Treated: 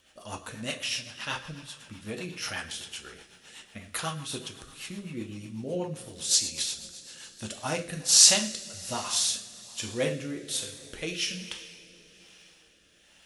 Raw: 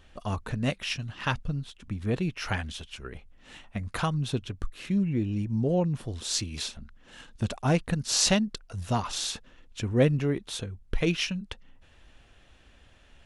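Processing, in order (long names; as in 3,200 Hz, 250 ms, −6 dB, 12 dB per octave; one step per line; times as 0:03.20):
RIAA equalisation recording
coupled-rooms reverb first 0.45 s, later 4.4 s, from −19 dB, DRR 1 dB
rotating-speaker cabinet horn 8 Hz, later 1.2 Hz, at 0:06.98
level −3 dB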